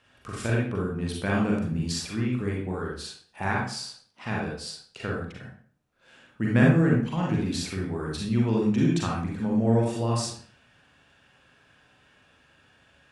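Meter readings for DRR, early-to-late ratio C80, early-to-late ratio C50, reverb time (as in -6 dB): -3.5 dB, 6.5 dB, 1.0 dB, 0.50 s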